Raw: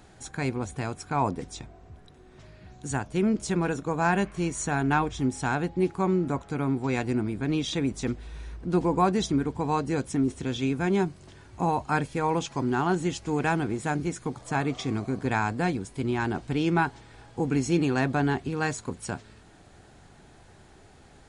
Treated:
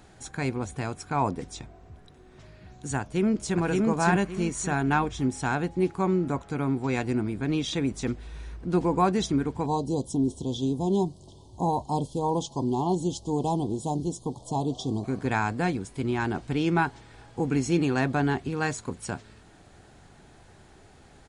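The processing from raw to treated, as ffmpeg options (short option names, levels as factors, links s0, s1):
-filter_complex "[0:a]asplit=2[s0][s1];[s1]afade=t=in:st=3:d=0.01,afade=t=out:st=3.59:d=0.01,aecho=0:1:570|1140|1710|2280:0.891251|0.267375|0.0802126|0.0240638[s2];[s0][s2]amix=inputs=2:normalize=0,asettb=1/sr,asplit=3[s3][s4][s5];[s3]atrim=end=9.664[s6];[s4]atrim=start=9.66:end=15.04,asetpts=PTS-STARTPTS,afade=t=in:d=0.004:c=qsin,afade=t=out:st=5.376:d=0.004:c=qsin,asuperstop=centerf=1800:order=12:qfactor=0.84[s7];[s5]atrim=start=15.036[s8];[s6][s7]acrossfade=d=0.004:c1=hsin:c2=qsin[s9];[s9][s8]acrossfade=d=0.004:c1=qsin:c2=hsin"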